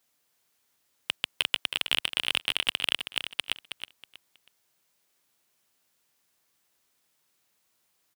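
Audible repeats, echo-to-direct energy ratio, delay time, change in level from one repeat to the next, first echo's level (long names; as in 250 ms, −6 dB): 3, −8.5 dB, 320 ms, −11.5 dB, −9.0 dB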